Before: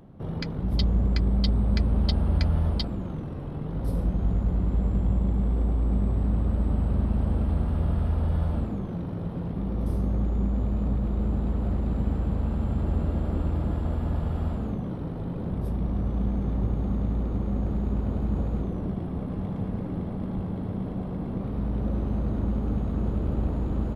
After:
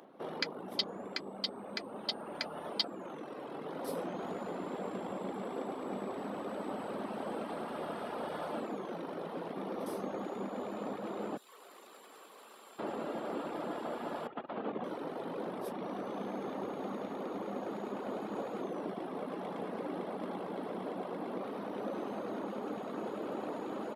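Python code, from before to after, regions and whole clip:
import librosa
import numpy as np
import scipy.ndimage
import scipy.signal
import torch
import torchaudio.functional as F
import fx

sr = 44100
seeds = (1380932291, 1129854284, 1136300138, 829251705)

y = fx.chain(x, sr, fx.differentiator(),
    fx.small_body(hz=(400.0, 1100.0), ring_ms=20, db=7),
    fx.env_flatten(amount_pct=100), at=(11.37, 12.79))
y = fx.chain(y, sr, fx.lowpass(hz=3500.0, slope=24),
    fx.over_compress(threshold_db=-30.0, ratio=-0.5), at=(14.27, 14.84))
y = scipy.signal.sosfilt(scipy.signal.bessel(4, 470.0, 'highpass', norm='mag', fs=sr, output='sos'), y)
y = fx.dereverb_blind(y, sr, rt60_s=0.53)
y = fx.rider(y, sr, range_db=10, speed_s=2.0)
y = y * 10.0 ** (3.0 / 20.0)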